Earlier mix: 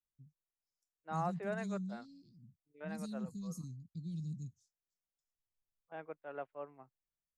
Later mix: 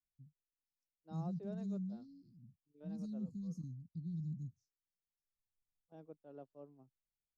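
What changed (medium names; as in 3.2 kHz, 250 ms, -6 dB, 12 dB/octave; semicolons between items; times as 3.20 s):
first voice: add distance through air 270 m; master: add FFT filter 270 Hz 0 dB, 2.1 kHz -28 dB, 5.7 kHz +7 dB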